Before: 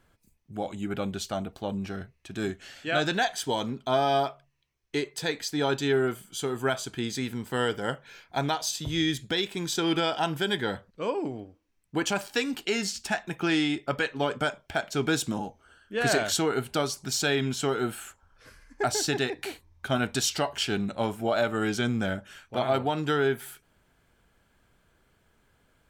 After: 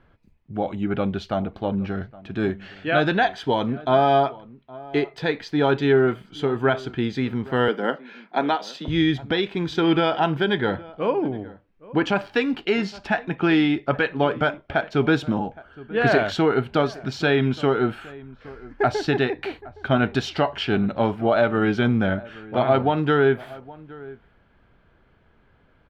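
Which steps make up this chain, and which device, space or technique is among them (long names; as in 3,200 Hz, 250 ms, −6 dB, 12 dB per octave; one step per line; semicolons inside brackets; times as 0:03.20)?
shout across a valley (high-frequency loss of the air 340 metres; slap from a distant wall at 140 metres, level −20 dB)
0:07.68–0:08.88: Butterworth high-pass 180 Hz 48 dB per octave
level +8 dB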